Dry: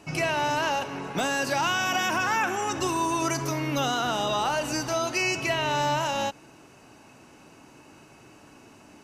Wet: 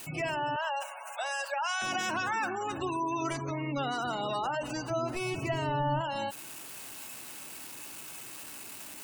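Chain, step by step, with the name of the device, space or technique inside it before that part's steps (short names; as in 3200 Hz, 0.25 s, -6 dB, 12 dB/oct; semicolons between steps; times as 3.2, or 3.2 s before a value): budget class-D amplifier (switching dead time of 0.12 ms; switching spikes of -23 dBFS); spectral gate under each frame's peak -20 dB strong; 0.56–1.82 steep high-pass 550 Hz 96 dB/oct; 4.9–6.01 tilt -2.5 dB/oct; gain -5 dB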